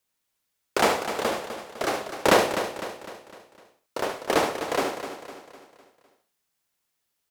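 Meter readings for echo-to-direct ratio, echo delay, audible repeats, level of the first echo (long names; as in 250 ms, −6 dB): −5.0 dB, 72 ms, 8, −8.0 dB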